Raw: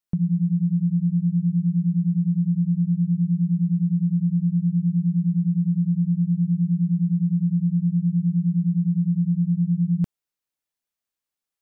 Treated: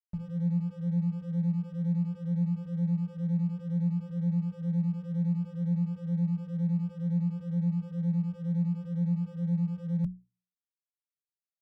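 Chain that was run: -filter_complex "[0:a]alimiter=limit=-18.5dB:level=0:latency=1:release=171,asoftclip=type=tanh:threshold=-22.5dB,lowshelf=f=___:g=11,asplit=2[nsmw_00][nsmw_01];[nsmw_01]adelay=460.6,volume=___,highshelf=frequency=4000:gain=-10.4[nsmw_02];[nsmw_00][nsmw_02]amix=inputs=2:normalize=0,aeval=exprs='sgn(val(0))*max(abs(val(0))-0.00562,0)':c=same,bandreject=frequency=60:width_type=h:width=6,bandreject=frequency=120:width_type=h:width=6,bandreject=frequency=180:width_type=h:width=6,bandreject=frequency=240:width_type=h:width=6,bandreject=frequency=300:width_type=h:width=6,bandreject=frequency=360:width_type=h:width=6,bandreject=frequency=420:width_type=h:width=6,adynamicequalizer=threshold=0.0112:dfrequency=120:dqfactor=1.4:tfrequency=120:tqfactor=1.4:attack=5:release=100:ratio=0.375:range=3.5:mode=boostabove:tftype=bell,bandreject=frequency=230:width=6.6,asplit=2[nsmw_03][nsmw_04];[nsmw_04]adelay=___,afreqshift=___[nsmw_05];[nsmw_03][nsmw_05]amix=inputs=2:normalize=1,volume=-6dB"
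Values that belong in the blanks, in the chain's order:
170, -29dB, 3.2, 2.1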